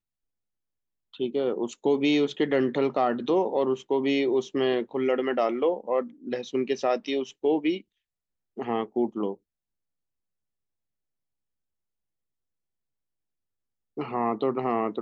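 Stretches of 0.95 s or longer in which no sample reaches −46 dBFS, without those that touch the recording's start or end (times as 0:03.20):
0:09.35–0:13.97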